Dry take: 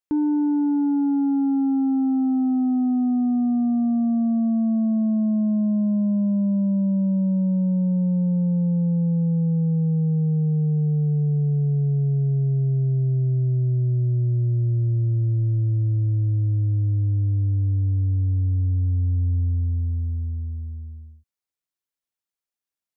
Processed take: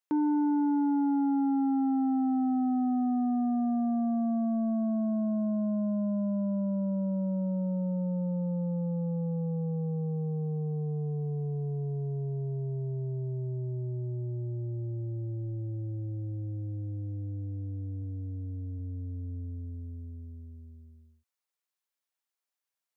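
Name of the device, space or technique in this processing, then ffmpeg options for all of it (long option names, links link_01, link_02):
filter by subtraction: -filter_complex "[0:a]asplit=3[link_01][link_02][link_03];[link_01]afade=type=out:start_time=18.02:duration=0.02[link_04];[link_02]highpass=44,afade=type=in:start_time=18.02:duration=0.02,afade=type=out:start_time=18.78:duration=0.02[link_05];[link_03]afade=type=in:start_time=18.78:duration=0.02[link_06];[link_04][link_05][link_06]amix=inputs=3:normalize=0,asplit=2[link_07][link_08];[link_08]lowpass=820,volume=-1[link_09];[link_07][link_09]amix=inputs=2:normalize=0"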